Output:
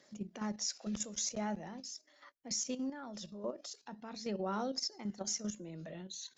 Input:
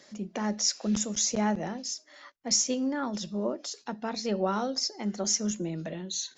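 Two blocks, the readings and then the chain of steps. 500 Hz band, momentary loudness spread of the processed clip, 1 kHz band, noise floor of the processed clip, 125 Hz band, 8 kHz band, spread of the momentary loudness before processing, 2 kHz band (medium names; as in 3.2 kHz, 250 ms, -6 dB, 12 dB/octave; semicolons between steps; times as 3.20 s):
-9.5 dB, 11 LU, -9.5 dB, -68 dBFS, -10.0 dB, no reading, 10 LU, -10.5 dB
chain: phaser 0.44 Hz, delay 2 ms, feedback 28%; level held to a coarse grid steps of 10 dB; trim -6 dB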